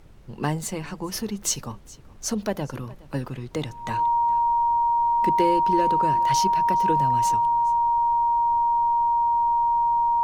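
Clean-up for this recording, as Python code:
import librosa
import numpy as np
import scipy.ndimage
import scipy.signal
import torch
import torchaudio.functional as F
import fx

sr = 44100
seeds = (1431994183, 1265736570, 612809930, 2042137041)

y = fx.fix_declip(x, sr, threshold_db=-11.5)
y = fx.notch(y, sr, hz=940.0, q=30.0)
y = fx.noise_reduce(y, sr, print_start_s=1.73, print_end_s=2.23, reduce_db=27.0)
y = fx.fix_echo_inverse(y, sr, delay_ms=417, level_db=-21.5)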